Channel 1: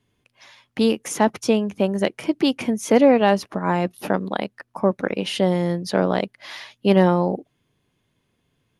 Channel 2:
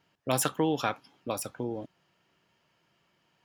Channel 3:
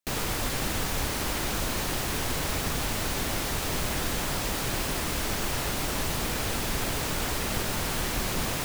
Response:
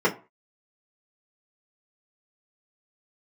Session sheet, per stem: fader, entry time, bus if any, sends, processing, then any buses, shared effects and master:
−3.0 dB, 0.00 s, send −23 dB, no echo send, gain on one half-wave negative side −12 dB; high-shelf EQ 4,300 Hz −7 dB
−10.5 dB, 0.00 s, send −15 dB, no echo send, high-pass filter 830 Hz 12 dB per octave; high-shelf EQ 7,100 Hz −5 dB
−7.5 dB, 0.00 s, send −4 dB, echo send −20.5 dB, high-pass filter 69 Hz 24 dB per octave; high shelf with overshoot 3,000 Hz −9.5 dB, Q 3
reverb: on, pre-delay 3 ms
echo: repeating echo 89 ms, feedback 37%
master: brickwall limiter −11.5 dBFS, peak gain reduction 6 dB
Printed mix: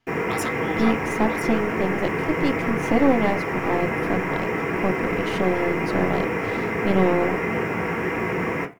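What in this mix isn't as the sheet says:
stem 2 −10.5 dB → −1.0 dB
master: missing brickwall limiter −11.5 dBFS, peak gain reduction 6 dB

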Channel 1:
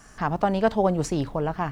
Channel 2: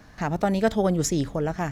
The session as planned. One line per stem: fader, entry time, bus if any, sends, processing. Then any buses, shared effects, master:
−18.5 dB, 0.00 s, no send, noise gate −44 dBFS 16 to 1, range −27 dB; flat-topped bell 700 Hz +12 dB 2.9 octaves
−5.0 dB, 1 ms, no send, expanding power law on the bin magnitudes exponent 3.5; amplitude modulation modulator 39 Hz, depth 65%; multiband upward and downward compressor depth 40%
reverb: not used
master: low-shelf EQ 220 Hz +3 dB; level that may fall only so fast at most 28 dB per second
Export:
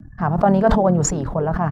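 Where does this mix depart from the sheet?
stem 1 −18.5 dB → −9.5 dB
stem 2 −5.0 dB → +3.0 dB

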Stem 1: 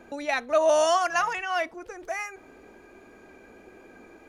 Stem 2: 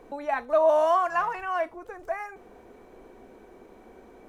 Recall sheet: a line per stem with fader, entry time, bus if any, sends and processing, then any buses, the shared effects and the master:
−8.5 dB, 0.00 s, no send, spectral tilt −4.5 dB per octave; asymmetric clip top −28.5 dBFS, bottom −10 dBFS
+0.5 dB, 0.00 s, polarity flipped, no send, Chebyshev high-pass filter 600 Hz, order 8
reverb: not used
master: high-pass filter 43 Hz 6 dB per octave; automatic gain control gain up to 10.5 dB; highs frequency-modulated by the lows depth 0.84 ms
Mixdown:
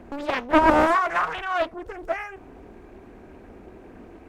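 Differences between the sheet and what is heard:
stem 1 −8.5 dB → −1.5 dB
master: missing automatic gain control gain up to 10.5 dB

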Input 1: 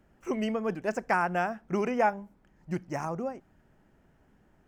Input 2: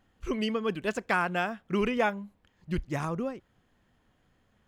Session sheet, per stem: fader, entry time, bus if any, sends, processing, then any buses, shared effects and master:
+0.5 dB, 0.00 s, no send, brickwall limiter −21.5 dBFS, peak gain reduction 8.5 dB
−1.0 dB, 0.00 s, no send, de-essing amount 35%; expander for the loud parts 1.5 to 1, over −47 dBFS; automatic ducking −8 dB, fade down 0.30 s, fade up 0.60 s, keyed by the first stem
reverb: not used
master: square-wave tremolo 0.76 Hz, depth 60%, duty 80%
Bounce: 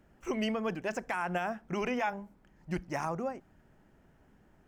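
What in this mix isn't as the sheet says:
stem 2: polarity flipped
master: missing square-wave tremolo 0.76 Hz, depth 60%, duty 80%

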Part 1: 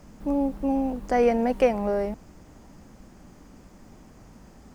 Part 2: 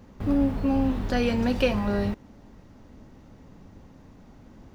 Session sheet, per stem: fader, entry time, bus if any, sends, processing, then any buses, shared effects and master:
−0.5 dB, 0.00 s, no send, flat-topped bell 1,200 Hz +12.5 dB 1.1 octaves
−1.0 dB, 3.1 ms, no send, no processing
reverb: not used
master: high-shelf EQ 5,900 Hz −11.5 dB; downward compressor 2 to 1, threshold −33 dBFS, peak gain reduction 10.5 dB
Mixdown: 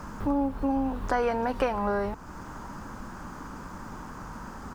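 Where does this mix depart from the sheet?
stem 1 −0.5 dB → +6.5 dB
master: missing high-shelf EQ 5,900 Hz −11.5 dB

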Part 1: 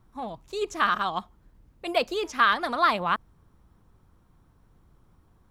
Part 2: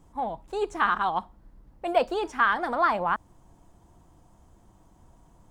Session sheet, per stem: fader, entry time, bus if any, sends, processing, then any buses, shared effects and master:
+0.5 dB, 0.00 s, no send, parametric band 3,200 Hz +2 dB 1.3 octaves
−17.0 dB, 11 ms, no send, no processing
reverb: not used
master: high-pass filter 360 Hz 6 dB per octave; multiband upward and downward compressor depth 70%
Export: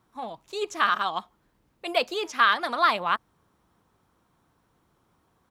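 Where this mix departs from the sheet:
stem 2: polarity flipped
master: missing multiband upward and downward compressor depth 70%

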